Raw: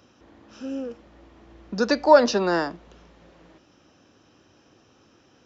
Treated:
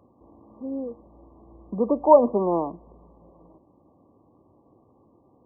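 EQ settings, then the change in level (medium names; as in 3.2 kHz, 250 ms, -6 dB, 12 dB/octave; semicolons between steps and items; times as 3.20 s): brick-wall FIR low-pass 1.2 kHz; 0.0 dB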